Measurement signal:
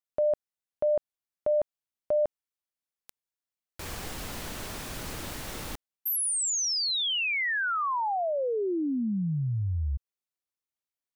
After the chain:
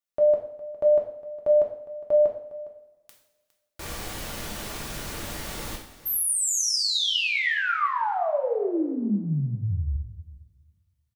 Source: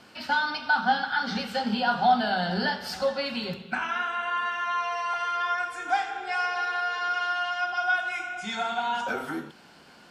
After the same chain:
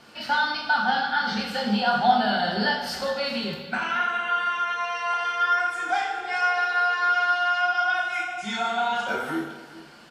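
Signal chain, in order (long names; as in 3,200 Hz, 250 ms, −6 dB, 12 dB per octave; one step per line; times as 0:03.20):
single-tap delay 409 ms −17.5 dB
coupled-rooms reverb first 0.56 s, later 1.9 s, from −18 dB, DRR 0 dB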